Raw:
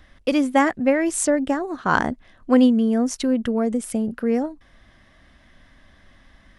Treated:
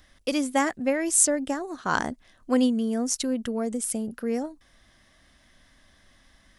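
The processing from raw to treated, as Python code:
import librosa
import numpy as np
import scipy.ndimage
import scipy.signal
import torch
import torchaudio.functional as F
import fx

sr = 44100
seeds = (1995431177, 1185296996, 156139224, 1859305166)

y = fx.bass_treble(x, sr, bass_db=-2, treble_db=12)
y = F.gain(torch.from_numpy(y), -6.0).numpy()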